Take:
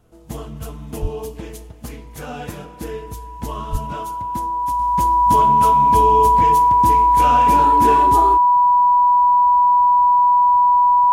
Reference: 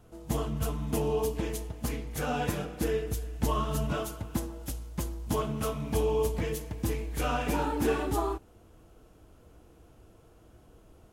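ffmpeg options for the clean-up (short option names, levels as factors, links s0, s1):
-filter_complex "[0:a]bandreject=f=980:w=30,asplit=3[s0][s1][s2];[s0]afade=t=out:st=1.01:d=0.02[s3];[s1]highpass=f=140:w=0.5412,highpass=f=140:w=1.3066,afade=t=in:st=1.01:d=0.02,afade=t=out:st=1.13:d=0.02[s4];[s2]afade=t=in:st=1.13:d=0.02[s5];[s3][s4][s5]amix=inputs=3:normalize=0,asplit=3[s6][s7][s8];[s6]afade=t=out:st=3.71:d=0.02[s9];[s7]highpass=f=140:w=0.5412,highpass=f=140:w=1.3066,afade=t=in:st=3.71:d=0.02,afade=t=out:st=3.83:d=0.02[s10];[s8]afade=t=in:st=3.83:d=0.02[s11];[s9][s10][s11]amix=inputs=3:normalize=0,asetnsamples=n=441:p=0,asendcmd='4.79 volume volume -7dB',volume=1"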